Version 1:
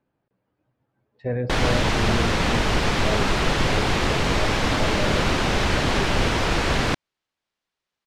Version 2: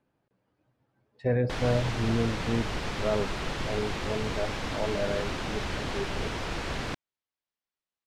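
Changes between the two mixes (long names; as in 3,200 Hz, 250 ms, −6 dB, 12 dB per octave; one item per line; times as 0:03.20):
speech: remove high-frequency loss of the air 110 metres
background −11.5 dB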